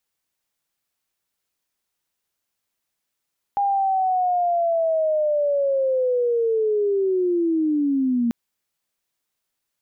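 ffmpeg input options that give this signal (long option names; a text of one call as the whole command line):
ffmpeg -f lavfi -i "aevalsrc='0.133*sin(2*PI*(810*t-580*t*t/(2*4.74)))':duration=4.74:sample_rate=44100" out.wav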